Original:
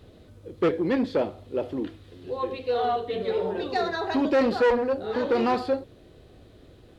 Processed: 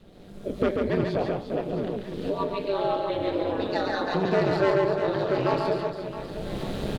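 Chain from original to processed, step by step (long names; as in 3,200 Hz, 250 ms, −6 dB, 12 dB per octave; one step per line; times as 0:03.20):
camcorder AGC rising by 27 dB per second
ring modulation 97 Hz
reverse bouncing-ball delay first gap 140 ms, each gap 1.5×, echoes 5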